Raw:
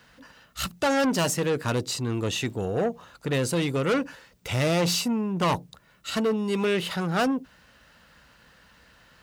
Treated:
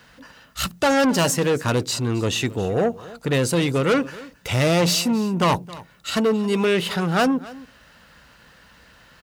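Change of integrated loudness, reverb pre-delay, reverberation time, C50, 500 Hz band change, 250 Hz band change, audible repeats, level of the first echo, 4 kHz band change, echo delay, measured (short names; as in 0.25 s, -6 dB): +5.0 dB, none, none, none, +5.0 dB, +5.0 dB, 1, -19.5 dB, +5.0 dB, 0.27 s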